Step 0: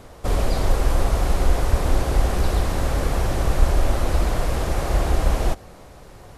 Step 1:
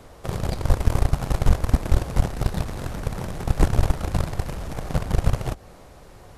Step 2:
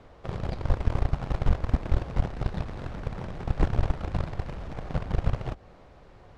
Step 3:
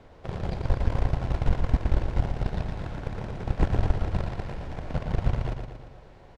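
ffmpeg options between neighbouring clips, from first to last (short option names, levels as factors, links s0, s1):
-filter_complex "[0:a]acrossover=split=130[s0][s1];[s1]acompressor=threshold=0.0282:ratio=6[s2];[s0][s2]amix=inputs=2:normalize=0,aeval=exprs='0.668*(cos(1*acos(clip(val(0)/0.668,-1,1)))-cos(1*PI/2))+0.119*(cos(5*acos(clip(val(0)/0.668,-1,1)))-cos(5*PI/2))+0.266*(cos(7*acos(clip(val(0)/0.668,-1,1)))-cos(7*PI/2))':c=same,volume=0.841"
-af "lowpass=3600,volume=0.531"
-af "bandreject=f=1200:w=11,aecho=1:1:116|232|348|464|580|696|812:0.501|0.266|0.141|0.0746|0.0395|0.021|0.0111"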